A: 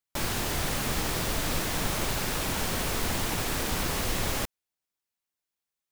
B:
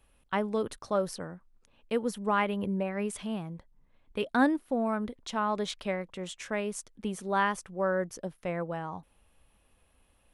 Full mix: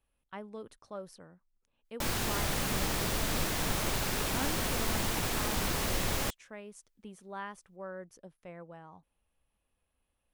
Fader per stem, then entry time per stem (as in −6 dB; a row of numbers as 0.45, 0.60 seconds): −2.5, −14.0 decibels; 1.85, 0.00 seconds